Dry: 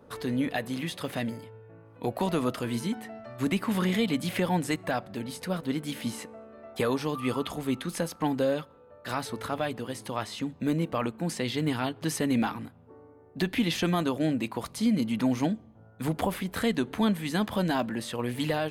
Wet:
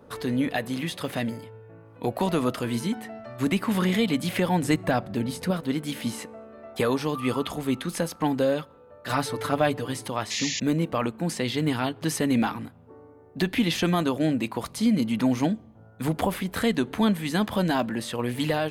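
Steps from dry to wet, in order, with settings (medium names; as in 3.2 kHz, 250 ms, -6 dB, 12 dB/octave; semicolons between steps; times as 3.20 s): 4.62–5.51 s: bass shelf 400 Hz +7 dB; 9.09–10.08 s: comb 6.8 ms, depth 94%; 10.30–10.60 s: painted sound noise 1.7–7.3 kHz -33 dBFS; trim +3 dB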